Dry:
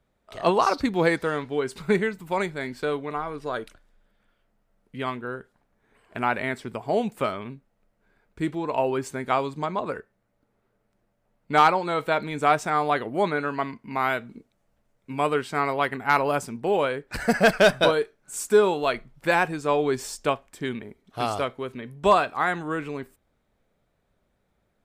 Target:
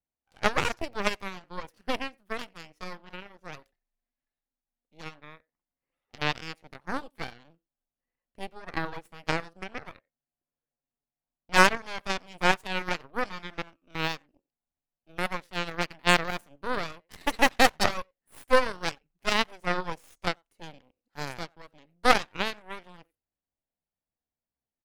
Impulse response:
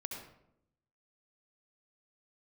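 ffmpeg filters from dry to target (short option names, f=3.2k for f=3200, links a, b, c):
-filter_complex "[0:a]asetrate=53981,aresample=44100,atempo=0.816958,asplit=2[a][b];[b]adelay=90,highpass=300,lowpass=3.4k,asoftclip=type=hard:threshold=-16.5dB,volume=-19dB[c];[a][c]amix=inputs=2:normalize=0,aeval=exprs='0.447*(cos(1*acos(clip(val(0)/0.447,-1,1)))-cos(1*PI/2))+0.158*(cos(2*acos(clip(val(0)/0.447,-1,1)))-cos(2*PI/2))+0.141*(cos(3*acos(clip(val(0)/0.447,-1,1)))-cos(3*PI/2))+0.0178*(cos(6*acos(clip(val(0)/0.447,-1,1)))-cos(6*PI/2))':c=same"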